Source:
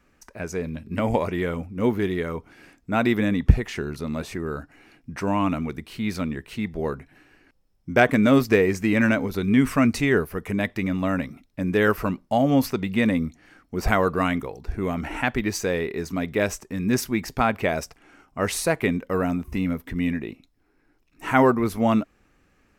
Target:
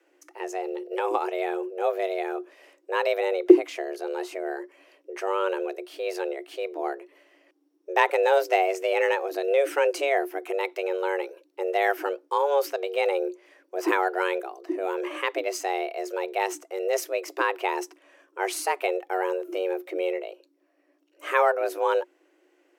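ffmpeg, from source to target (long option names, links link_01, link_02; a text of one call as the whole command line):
ffmpeg -i in.wav -af "equalizer=frequency=81:width=3.3:gain=11,afreqshift=280,volume=-4dB" out.wav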